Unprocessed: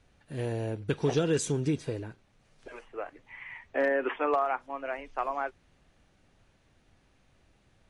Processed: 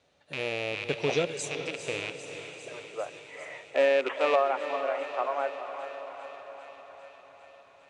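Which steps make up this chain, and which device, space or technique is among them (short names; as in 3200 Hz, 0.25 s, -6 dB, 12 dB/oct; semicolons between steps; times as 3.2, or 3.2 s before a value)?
HPF 100 Hz 6 dB/oct; 1.25–1.85 pre-emphasis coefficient 0.8; car door speaker with a rattle (rattling part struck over -41 dBFS, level -22 dBFS; speaker cabinet 110–8500 Hz, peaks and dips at 120 Hz -9 dB, 210 Hz -9 dB, 320 Hz -4 dB, 580 Hz +7 dB, 1600 Hz -4 dB, 3800 Hz +5 dB); thinning echo 0.4 s, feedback 78%, high-pass 770 Hz, level -13.5 dB; diffused feedback echo 0.459 s, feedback 58%, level -10 dB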